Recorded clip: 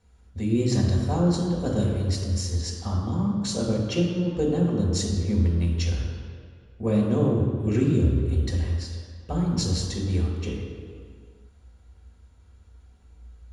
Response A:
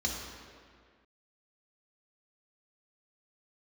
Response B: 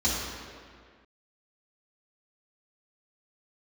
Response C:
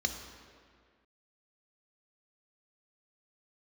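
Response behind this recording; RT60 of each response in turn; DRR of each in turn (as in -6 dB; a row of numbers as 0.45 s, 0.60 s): A; 1.9 s, 1.9 s, 1.9 s; -2.5 dB, -9.0 dB, 4.5 dB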